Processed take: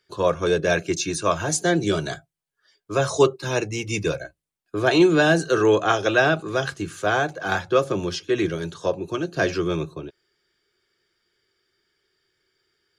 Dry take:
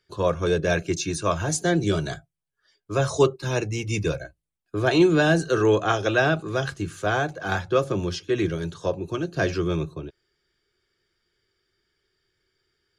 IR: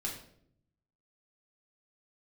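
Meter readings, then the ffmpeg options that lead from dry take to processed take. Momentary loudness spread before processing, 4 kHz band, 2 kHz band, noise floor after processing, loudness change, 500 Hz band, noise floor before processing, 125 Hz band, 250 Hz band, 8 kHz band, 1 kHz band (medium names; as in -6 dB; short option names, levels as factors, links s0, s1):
9 LU, +3.0 dB, +3.0 dB, -82 dBFS, +2.0 dB, +2.0 dB, -81 dBFS, -2.5 dB, +1.0 dB, +3.0 dB, +3.0 dB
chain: -af "lowshelf=f=120:g=-12,volume=1.41"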